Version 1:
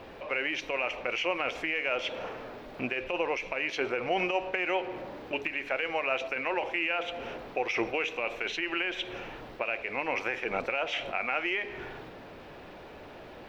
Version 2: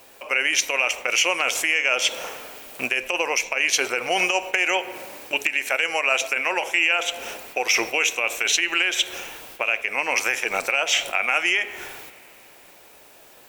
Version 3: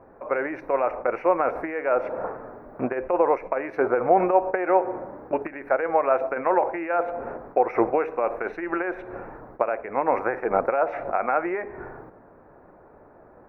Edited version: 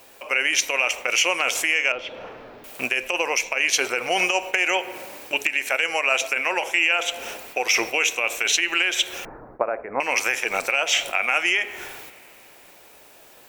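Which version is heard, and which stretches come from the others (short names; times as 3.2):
2
1.92–2.64 from 1
9.25–10 from 3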